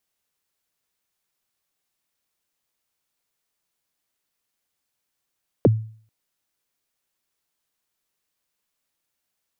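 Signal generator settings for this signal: kick drum length 0.44 s, from 600 Hz, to 110 Hz, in 27 ms, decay 0.48 s, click off, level -8.5 dB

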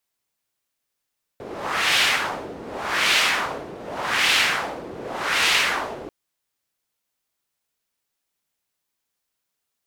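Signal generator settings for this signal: wind-like swept noise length 4.69 s, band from 390 Hz, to 2.8 kHz, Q 1.4, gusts 4, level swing 17.5 dB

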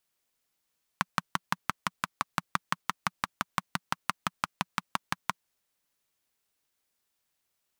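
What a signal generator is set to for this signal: single-cylinder engine model, steady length 4.45 s, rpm 700, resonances 180/1100 Hz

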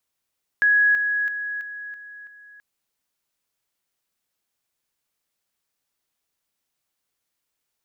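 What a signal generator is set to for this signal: level ladder 1.67 kHz -14 dBFS, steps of -6 dB, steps 6, 0.33 s 0.00 s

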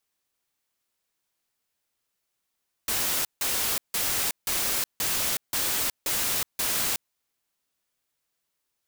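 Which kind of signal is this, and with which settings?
noise bursts white, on 0.37 s, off 0.16 s, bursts 8, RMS -26.5 dBFS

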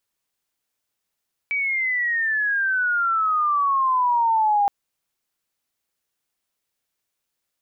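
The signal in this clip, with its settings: sweep logarithmic 2.3 kHz -> 800 Hz -20.5 dBFS -> -15.5 dBFS 3.17 s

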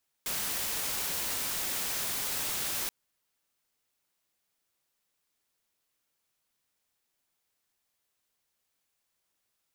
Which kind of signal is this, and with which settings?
noise white, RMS -33 dBFS 2.63 s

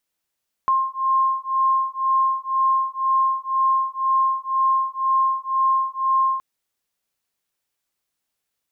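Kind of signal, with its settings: beating tones 1.06 kHz, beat 2 Hz, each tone -20.5 dBFS 5.72 s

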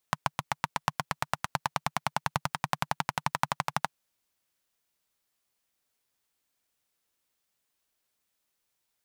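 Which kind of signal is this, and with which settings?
single-cylinder engine model, changing speed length 3.78 s, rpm 900, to 1500, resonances 150/910 Hz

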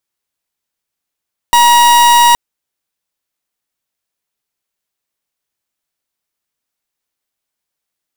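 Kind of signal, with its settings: pulse 953 Hz, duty 42% -7 dBFS 0.82 s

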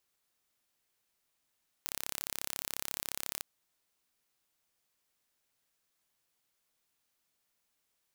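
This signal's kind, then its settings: pulse train 34.2 per s, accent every 0, -9 dBFS 1.56 s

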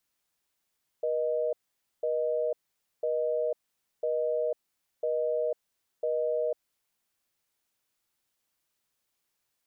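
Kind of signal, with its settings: call progress tone busy tone, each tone -28.5 dBFS 5.89 s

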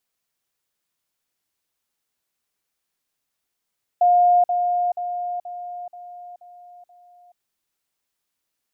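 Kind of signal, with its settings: level ladder 710 Hz -12 dBFS, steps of -6 dB, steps 7, 0.43 s 0.05 s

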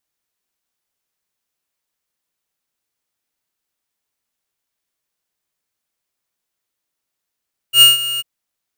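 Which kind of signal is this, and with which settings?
ADSR square 2.85 kHz, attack 86 ms, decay 155 ms, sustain -16 dB, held 0.47 s, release 25 ms -5.5 dBFS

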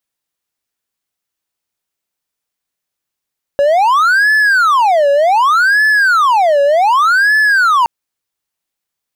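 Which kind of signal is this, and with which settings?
siren wail 563–1730 Hz 0.66 per s triangle -5.5 dBFS 4.27 s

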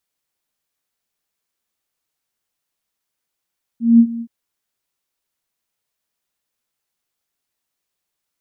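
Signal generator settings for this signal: ADSR sine 232 Hz, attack 192 ms, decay 69 ms, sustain -18.5 dB, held 0.41 s, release 63 ms -4 dBFS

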